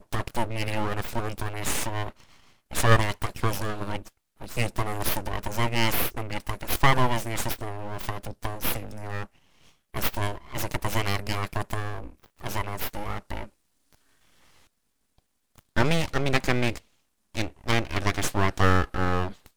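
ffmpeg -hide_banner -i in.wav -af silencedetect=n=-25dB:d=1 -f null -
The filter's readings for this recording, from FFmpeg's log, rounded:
silence_start: 13.43
silence_end: 15.77 | silence_duration: 2.34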